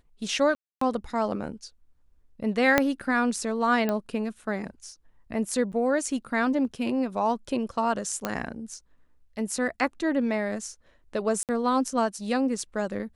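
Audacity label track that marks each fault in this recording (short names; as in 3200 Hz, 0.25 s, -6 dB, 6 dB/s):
0.550000	0.810000	gap 0.264 s
2.780000	2.780000	pop -5 dBFS
3.890000	3.890000	pop -14 dBFS
5.720000	5.730000	gap 7.9 ms
8.250000	8.250000	pop -12 dBFS
11.430000	11.490000	gap 58 ms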